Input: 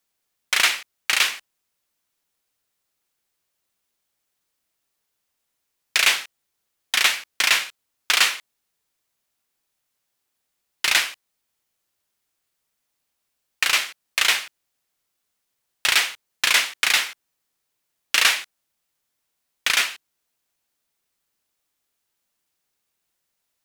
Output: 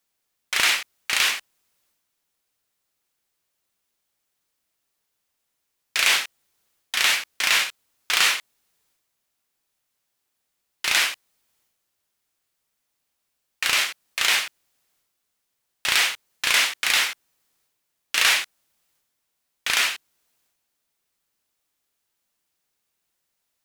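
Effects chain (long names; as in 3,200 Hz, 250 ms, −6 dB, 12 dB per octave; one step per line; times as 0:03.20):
transient designer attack −6 dB, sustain +6 dB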